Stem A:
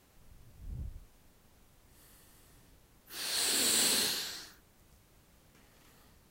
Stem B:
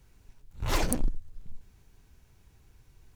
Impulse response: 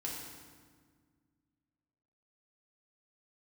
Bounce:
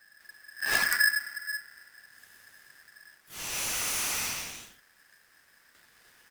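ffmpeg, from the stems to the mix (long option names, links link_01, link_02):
-filter_complex "[0:a]asoftclip=type=hard:threshold=-29dB,adelay=200,volume=1dB[link_01];[1:a]volume=-3dB,asplit=2[link_02][link_03];[link_03]volume=-9.5dB[link_04];[2:a]atrim=start_sample=2205[link_05];[link_04][link_05]afir=irnorm=-1:irlink=0[link_06];[link_01][link_02][link_06]amix=inputs=3:normalize=0,aeval=exprs='val(0)*sgn(sin(2*PI*1700*n/s))':channel_layout=same"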